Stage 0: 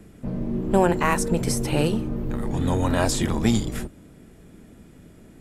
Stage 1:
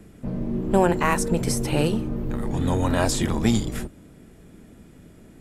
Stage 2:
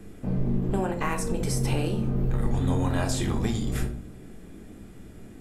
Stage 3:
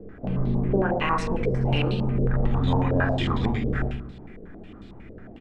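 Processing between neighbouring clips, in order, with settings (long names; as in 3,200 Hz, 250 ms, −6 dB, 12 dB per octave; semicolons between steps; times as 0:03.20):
no processing that can be heard
downward compressor 10 to 1, threshold −25 dBFS, peak gain reduction 12.5 dB; on a send at −3 dB: convolution reverb RT60 0.50 s, pre-delay 3 ms
single-tap delay 115 ms −8 dB; low-pass on a step sequencer 11 Hz 510–3,900 Hz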